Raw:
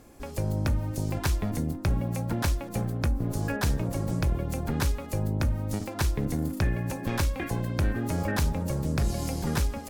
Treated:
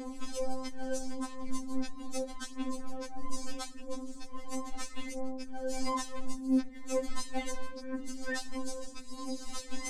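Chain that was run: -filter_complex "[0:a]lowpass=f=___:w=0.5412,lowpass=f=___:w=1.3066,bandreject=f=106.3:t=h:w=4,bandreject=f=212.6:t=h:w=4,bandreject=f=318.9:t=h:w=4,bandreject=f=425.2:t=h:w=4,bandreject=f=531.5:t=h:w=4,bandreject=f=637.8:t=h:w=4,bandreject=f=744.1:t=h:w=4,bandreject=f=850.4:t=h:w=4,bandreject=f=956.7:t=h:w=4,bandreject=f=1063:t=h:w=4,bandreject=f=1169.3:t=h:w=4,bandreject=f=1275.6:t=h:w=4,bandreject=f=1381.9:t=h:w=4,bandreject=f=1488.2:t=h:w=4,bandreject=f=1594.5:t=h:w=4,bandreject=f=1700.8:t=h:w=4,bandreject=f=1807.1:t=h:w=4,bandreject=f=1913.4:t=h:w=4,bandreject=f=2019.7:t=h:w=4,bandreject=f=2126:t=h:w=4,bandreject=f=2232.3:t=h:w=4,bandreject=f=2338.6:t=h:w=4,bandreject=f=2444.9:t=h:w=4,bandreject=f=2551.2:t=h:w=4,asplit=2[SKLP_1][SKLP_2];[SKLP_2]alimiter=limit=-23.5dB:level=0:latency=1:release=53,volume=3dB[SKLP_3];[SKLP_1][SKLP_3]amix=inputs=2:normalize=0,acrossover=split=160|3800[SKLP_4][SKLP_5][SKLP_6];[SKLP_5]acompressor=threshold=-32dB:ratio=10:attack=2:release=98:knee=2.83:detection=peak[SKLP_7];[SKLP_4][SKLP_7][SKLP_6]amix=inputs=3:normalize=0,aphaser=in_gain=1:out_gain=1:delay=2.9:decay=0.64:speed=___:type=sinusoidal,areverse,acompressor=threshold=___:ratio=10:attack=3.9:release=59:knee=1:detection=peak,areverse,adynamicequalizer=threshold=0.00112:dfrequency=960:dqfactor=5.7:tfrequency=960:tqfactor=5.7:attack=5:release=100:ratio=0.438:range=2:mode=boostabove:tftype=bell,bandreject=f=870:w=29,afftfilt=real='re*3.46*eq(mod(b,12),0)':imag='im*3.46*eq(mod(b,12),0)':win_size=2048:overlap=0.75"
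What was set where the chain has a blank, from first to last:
8600, 8600, 0.76, -27dB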